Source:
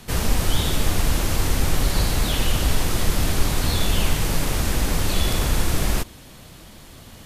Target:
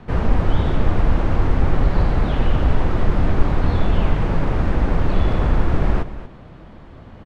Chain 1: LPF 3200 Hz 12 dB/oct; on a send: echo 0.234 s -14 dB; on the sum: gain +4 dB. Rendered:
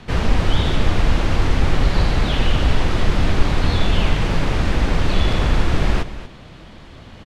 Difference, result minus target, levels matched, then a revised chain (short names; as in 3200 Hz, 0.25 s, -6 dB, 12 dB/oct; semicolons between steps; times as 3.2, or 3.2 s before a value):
4000 Hz band +11.5 dB
LPF 1400 Hz 12 dB/oct; on a send: echo 0.234 s -14 dB; on the sum: gain +4 dB